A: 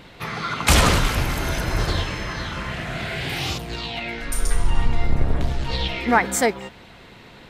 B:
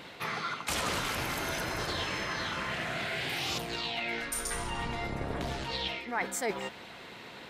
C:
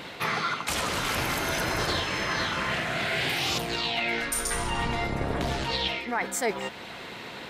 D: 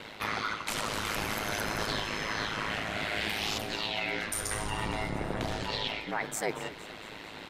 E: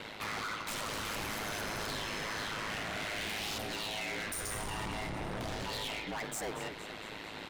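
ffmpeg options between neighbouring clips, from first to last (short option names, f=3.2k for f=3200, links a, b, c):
-af "highpass=f=320:p=1,areverse,acompressor=threshold=-31dB:ratio=5,areverse"
-af "alimiter=limit=-23.5dB:level=0:latency=1:release=408,volume=7dB"
-filter_complex "[0:a]aeval=exprs='val(0)*sin(2*PI*53*n/s)':c=same,asplit=6[a][b][c][d][e][f];[b]adelay=230,afreqshift=-66,volume=-16dB[g];[c]adelay=460,afreqshift=-132,volume=-21.2dB[h];[d]adelay=690,afreqshift=-198,volume=-26.4dB[i];[e]adelay=920,afreqshift=-264,volume=-31.6dB[j];[f]adelay=1150,afreqshift=-330,volume=-36.8dB[k];[a][g][h][i][j][k]amix=inputs=6:normalize=0,volume=-2dB"
-af "asoftclip=type=hard:threshold=-35dB"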